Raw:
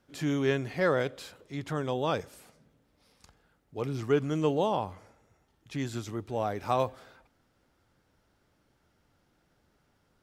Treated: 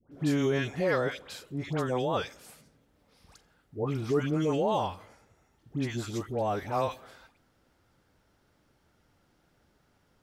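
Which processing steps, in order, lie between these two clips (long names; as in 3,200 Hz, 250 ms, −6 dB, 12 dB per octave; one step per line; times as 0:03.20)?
brickwall limiter −19 dBFS, peak gain reduction 5.5 dB
all-pass dispersion highs, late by 119 ms, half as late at 1,200 Hz
level +2 dB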